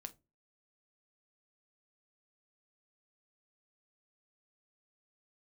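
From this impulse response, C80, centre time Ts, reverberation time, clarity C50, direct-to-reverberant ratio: 29.5 dB, 4 ms, non-exponential decay, 20.5 dB, 8.0 dB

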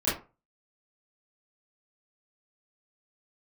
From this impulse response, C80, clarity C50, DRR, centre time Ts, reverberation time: 13.5 dB, 5.5 dB, −12.5 dB, 40 ms, 0.30 s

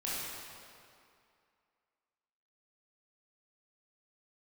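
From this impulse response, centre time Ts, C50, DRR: 157 ms, −4.0 dB, −8.5 dB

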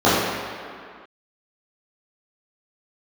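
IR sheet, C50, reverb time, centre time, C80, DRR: −2.0 dB, non-exponential decay, 121 ms, 0.5 dB, −12.5 dB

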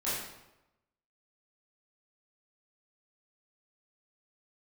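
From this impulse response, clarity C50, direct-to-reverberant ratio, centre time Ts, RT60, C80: −0.5 dB, −11.0 dB, 71 ms, 0.95 s, 3.0 dB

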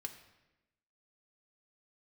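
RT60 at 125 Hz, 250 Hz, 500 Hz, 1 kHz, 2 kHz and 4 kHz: 1.1, 1.2, 1.1, 0.95, 1.0, 0.80 seconds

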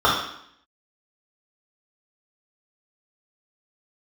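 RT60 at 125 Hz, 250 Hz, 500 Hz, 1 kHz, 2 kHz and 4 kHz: 0.60, 0.80, 0.65, 0.70, 0.70, 0.70 seconds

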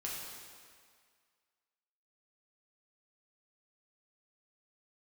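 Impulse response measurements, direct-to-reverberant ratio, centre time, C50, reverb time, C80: −5.0 dB, 104 ms, 0.0 dB, 1.9 s, 1.5 dB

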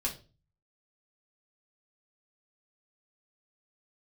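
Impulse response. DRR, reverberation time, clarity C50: −2.0 dB, 0.35 s, 12.0 dB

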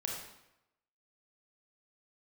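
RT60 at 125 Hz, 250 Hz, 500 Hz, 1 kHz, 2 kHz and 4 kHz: 0.90, 0.85, 0.85, 0.90, 0.85, 0.70 seconds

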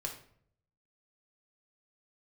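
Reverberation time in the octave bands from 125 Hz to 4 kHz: 1.0, 0.75, 0.65, 0.55, 0.50, 0.40 seconds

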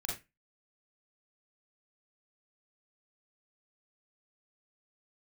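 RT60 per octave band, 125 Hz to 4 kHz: 0.25, 0.25, 0.20, 0.20, 0.25, 0.20 seconds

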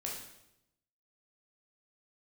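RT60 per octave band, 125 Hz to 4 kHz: 1.1, 1.0, 0.90, 0.80, 0.75, 0.75 seconds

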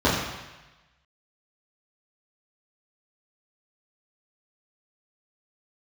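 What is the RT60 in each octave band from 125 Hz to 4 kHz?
1.2, 0.95, 1.0, 1.1, 1.2, 1.1 seconds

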